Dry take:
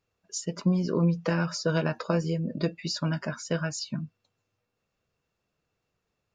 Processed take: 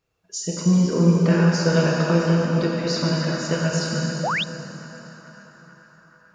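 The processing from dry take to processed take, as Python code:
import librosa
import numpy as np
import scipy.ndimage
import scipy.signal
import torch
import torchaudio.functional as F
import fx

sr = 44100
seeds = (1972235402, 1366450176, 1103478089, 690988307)

p1 = x + fx.echo_banded(x, sr, ms=434, feedback_pct=73, hz=1300.0, wet_db=-10.5, dry=0)
p2 = fx.rev_plate(p1, sr, seeds[0], rt60_s=4.0, hf_ratio=0.85, predelay_ms=0, drr_db=-3.5)
p3 = fx.spec_paint(p2, sr, seeds[1], shape='rise', start_s=4.23, length_s=0.21, low_hz=520.0, high_hz=4000.0, level_db=-26.0)
y = F.gain(torch.from_numpy(p3), 2.5).numpy()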